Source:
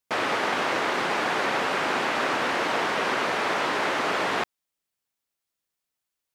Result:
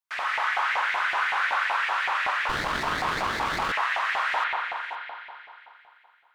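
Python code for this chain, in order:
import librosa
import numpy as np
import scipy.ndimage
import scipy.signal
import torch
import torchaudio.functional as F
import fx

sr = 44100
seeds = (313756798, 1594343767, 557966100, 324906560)

y = fx.low_shelf(x, sr, hz=400.0, db=-8.5)
y = y + 10.0 ** (-14.5 / 20.0) * np.pad(y, (int(514 * sr / 1000.0), 0))[:len(y)]
y = fx.rev_spring(y, sr, rt60_s=2.9, pass_ms=(41,), chirp_ms=25, drr_db=-4.5)
y = fx.filter_lfo_highpass(y, sr, shape='saw_up', hz=5.3, low_hz=740.0, high_hz=2200.0, q=2.9)
y = fx.running_max(y, sr, window=9, at=(2.49, 3.72))
y = y * 10.0 ** (-9.0 / 20.0)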